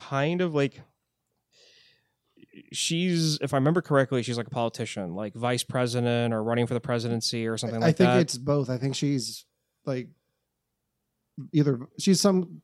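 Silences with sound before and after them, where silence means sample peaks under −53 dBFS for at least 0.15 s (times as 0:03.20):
0:00.84–0:01.53
0:01.93–0:02.37
0:09.43–0:09.85
0:10.12–0:11.38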